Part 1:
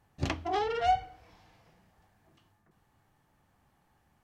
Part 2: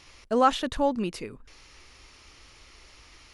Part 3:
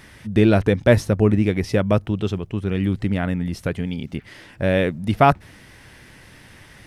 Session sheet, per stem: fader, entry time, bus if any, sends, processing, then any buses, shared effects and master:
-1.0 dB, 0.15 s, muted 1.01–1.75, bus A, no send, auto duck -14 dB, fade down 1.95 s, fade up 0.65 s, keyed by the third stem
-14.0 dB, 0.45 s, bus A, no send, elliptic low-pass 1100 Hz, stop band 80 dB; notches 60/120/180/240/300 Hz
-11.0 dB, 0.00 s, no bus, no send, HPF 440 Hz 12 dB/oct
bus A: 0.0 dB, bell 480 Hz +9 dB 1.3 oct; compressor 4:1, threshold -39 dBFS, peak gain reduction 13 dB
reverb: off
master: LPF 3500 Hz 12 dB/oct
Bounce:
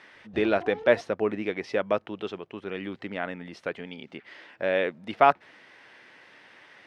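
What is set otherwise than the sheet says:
stem 2: muted; stem 3 -11.0 dB -> -3.0 dB

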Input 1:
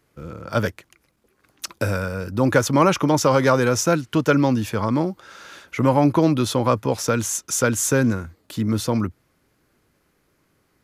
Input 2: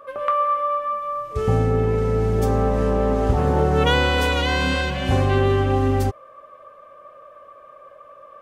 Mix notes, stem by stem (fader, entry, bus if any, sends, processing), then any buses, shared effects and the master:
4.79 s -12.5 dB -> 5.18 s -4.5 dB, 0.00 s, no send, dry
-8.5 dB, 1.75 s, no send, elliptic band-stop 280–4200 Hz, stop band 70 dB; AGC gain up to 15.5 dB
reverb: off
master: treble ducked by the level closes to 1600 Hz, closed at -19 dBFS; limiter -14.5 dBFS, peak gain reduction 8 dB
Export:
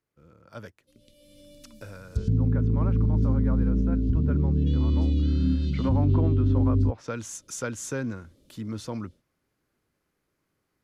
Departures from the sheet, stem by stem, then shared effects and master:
stem 1 -12.5 dB -> -20.0 dB; stem 2: entry 1.75 s -> 0.80 s

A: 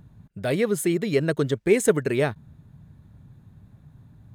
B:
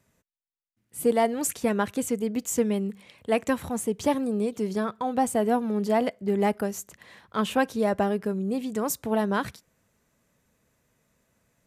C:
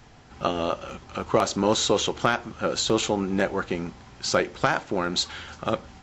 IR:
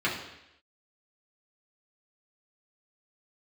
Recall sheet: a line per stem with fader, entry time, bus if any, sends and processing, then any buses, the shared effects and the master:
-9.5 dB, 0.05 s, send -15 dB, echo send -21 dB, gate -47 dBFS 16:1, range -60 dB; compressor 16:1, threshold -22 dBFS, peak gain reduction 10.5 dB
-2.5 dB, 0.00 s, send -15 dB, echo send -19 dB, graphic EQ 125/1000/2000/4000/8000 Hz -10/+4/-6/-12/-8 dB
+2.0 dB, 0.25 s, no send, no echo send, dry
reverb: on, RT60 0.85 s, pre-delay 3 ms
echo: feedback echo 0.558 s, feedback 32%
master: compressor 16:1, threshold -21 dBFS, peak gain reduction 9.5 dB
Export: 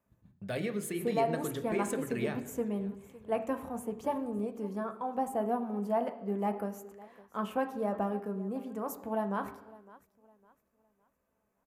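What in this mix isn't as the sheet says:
stem B -2.5 dB -> -9.0 dB; stem C: muted

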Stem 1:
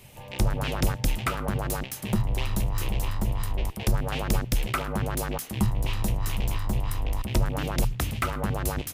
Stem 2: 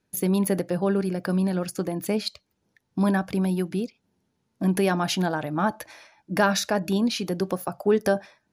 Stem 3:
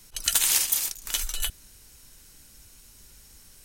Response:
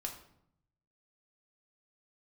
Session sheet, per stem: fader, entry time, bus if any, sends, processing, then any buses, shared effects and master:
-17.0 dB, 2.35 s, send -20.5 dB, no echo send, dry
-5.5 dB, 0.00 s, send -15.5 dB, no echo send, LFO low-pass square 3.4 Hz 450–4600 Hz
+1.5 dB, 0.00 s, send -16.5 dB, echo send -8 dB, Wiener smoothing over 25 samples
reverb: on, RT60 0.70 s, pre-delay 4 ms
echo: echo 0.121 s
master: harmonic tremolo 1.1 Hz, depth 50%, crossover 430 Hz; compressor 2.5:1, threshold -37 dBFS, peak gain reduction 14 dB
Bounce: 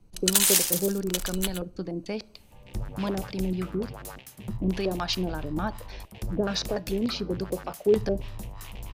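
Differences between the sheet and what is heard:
stem 1 -17.0 dB -> -9.5 dB; master: missing compressor 2.5:1, threshold -37 dBFS, peak gain reduction 14 dB

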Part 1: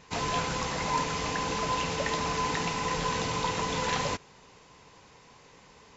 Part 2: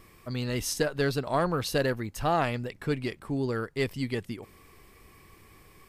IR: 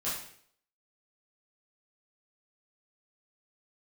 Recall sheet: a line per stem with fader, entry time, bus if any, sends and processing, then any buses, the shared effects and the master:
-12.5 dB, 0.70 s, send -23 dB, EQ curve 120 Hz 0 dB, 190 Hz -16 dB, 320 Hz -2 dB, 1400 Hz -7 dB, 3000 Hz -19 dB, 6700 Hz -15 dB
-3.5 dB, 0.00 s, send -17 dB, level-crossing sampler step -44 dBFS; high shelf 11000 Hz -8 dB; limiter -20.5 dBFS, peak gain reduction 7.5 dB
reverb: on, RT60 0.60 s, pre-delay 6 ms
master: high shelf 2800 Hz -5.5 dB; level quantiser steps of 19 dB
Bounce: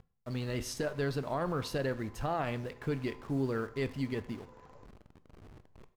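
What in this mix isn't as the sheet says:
stem 1 -12.5 dB -> -21.5 dB; master: missing level quantiser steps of 19 dB

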